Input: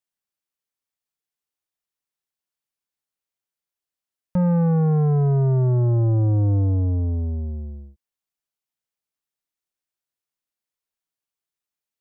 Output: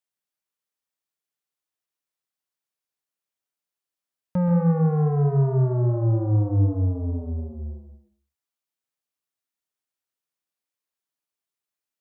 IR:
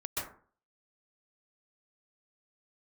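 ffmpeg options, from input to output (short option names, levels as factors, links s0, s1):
-filter_complex "[0:a]highpass=f=120:p=1,asplit=2[s0][s1];[1:a]atrim=start_sample=2205,afade=t=out:st=0.45:d=0.01,atrim=end_sample=20286[s2];[s1][s2]afir=irnorm=-1:irlink=0,volume=0.473[s3];[s0][s3]amix=inputs=2:normalize=0,volume=0.668"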